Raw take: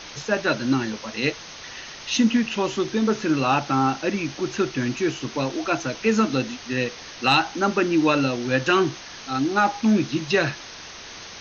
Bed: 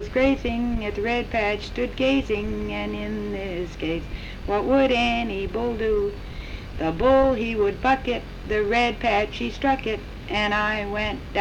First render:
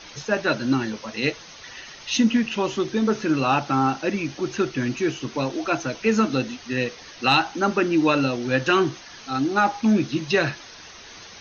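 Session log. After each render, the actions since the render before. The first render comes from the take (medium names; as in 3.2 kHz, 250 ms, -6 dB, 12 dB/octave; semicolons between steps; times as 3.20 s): noise reduction 7 dB, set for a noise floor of -40 dBFS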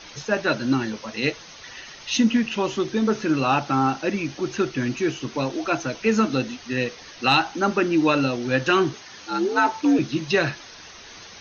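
8.93–9.99 s: frequency shift +68 Hz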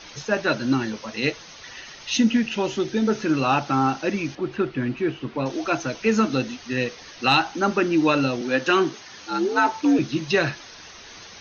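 2.14–3.19 s: band-stop 1.1 kHz, Q 5.4; 4.35–5.46 s: distance through air 290 m; 8.41–8.98 s: high-pass 180 Hz 24 dB/octave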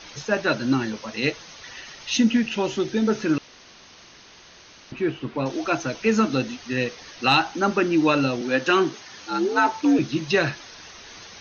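3.38–4.92 s: room tone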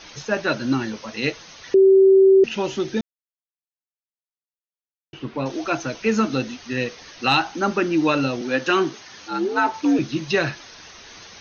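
1.74–2.44 s: bleep 385 Hz -9 dBFS; 3.01–5.13 s: mute; 9.28–9.74 s: distance through air 76 m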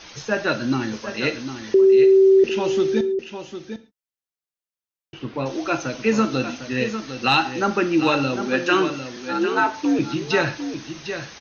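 delay 752 ms -9.5 dB; gated-style reverb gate 160 ms falling, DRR 10 dB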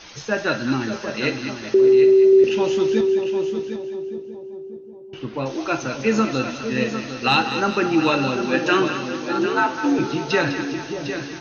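two-band feedback delay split 790 Hz, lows 586 ms, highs 202 ms, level -9 dB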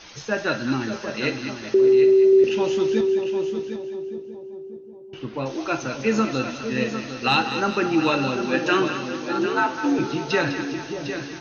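trim -2 dB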